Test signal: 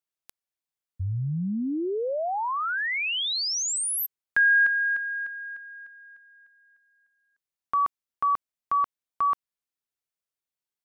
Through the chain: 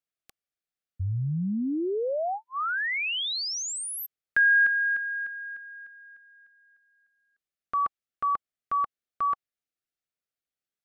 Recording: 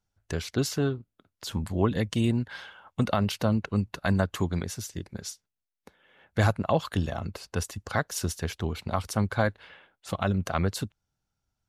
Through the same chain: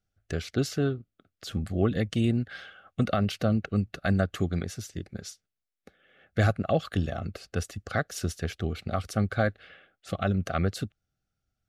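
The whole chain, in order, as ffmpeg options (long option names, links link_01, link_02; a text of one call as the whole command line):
ffmpeg -i in.wav -af "asuperstop=centerf=950:order=8:qfactor=2.9,highshelf=frequency=5700:gain=-8" out.wav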